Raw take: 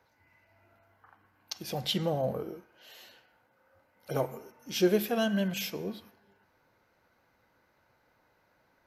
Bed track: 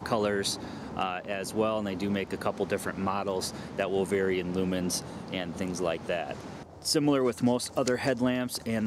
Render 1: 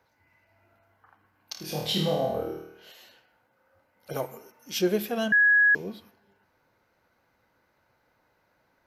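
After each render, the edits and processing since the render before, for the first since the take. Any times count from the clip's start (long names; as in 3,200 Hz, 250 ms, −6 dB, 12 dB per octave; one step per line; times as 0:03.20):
0:01.52–0:02.92: flutter between parallel walls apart 4.4 metres, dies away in 0.72 s
0:04.13–0:04.79: spectral tilt +1.5 dB per octave
0:05.32–0:05.75: beep over 1,670 Hz −16 dBFS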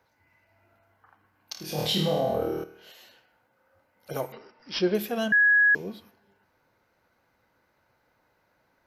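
0:01.78–0:02.64: envelope flattener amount 50%
0:04.32–0:04.95: bad sample-rate conversion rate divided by 4×, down none, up filtered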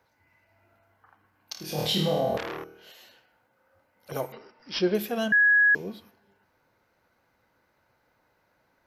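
0:02.37–0:04.12: saturating transformer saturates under 2,700 Hz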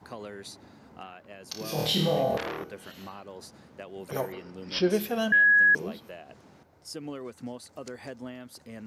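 mix in bed track −13.5 dB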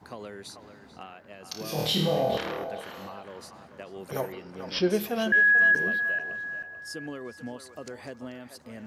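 feedback echo with a band-pass in the loop 438 ms, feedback 45%, band-pass 1,200 Hz, level −7.5 dB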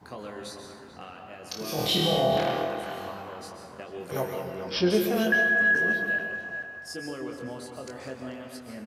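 double-tracking delay 23 ms −5.5 dB
dense smooth reverb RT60 1.3 s, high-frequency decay 0.55×, pre-delay 115 ms, DRR 4 dB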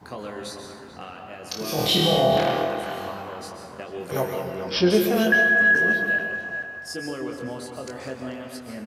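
level +4.5 dB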